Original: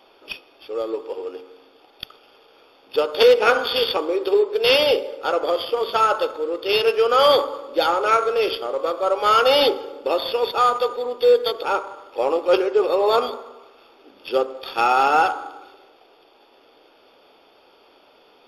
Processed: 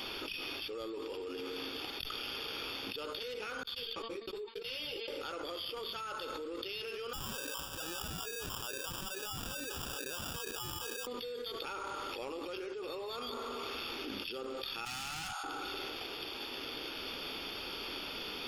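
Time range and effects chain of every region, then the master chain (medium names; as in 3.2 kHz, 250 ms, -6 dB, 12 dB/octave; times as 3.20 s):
3.63–5.08 s: gate -21 dBFS, range -45 dB + de-hum 227.5 Hz, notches 22 + three-phase chorus
7.13–11.07 s: valve stage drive 19 dB, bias 0.4 + LFO band-pass sine 2.3 Hz 340–3500 Hz + sample-rate reducer 2.1 kHz
14.85–15.44 s: steep high-pass 620 Hz 96 dB/octave + peaking EQ 1.1 kHz -10 dB 2.8 oct + hard clipper -31 dBFS
whole clip: amplifier tone stack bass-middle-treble 6-0-2; level flattener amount 100%; trim -6.5 dB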